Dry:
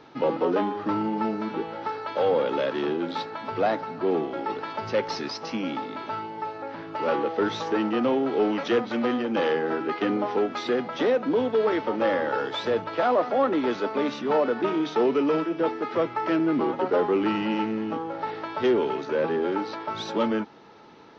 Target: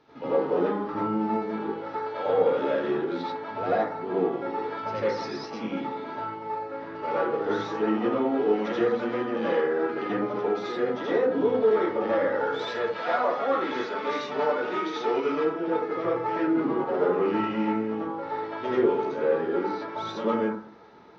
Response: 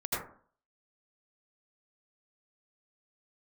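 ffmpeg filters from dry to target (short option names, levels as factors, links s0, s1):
-filter_complex "[0:a]asettb=1/sr,asplit=3[s0][s1][s2];[s0]atrim=end=12.594[s3];[s1]atrim=start=12.59:end=15.36,asetpts=PTS-STARTPTS,afade=t=in:d=0.004:c=qsin,afade=t=out:st=2.766:d=0.004:c=qsin,tiltshelf=f=920:g=-6.5[s4];[s2]atrim=start=15.356[s5];[s3][s4]acrossfade=d=0.004:c1=hsin:c2=qsin[s6];[s6][s5]acrossfade=d=0.004:c1=qsin:c2=hsin[s7];[1:a]atrim=start_sample=2205[s8];[s7][s8]afir=irnorm=-1:irlink=0,volume=0.376"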